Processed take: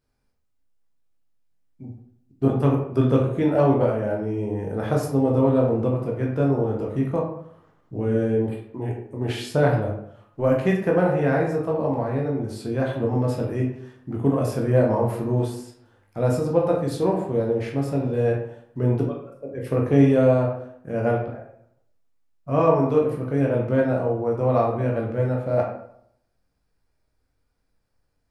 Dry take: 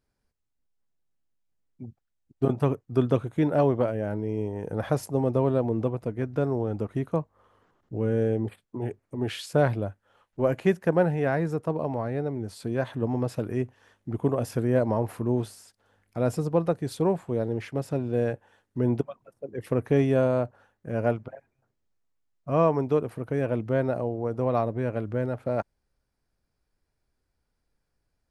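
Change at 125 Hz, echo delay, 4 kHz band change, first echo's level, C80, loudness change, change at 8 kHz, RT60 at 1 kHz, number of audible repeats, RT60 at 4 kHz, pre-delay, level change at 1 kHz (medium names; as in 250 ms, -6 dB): +5.0 dB, no echo, +3.0 dB, no echo, 7.5 dB, +4.5 dB, +2.0 dB, 0.65 s, no echo, 0.45 s, 12 ms, +4.5 dB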